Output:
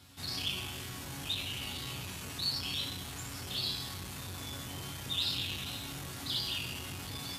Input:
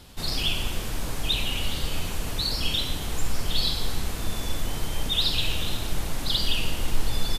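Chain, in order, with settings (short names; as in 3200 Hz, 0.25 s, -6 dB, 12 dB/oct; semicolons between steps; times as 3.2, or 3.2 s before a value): HPF 61 Hz 24 dB/oct; bell 490 Hz -7.5 dB 1.1 oct; resonator bank F#2 sus4, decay 0.35 s; core saturation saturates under 980 Hz; gain +7.5 dB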